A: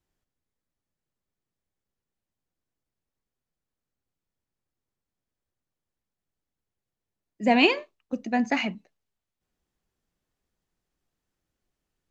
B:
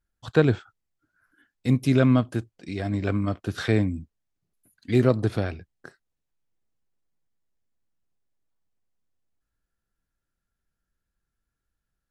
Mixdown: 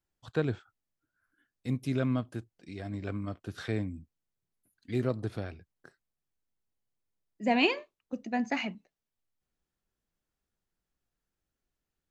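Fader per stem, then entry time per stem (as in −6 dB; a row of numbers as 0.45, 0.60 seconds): −6.0, −10.5 decibels; 0.00, 0.00 seconds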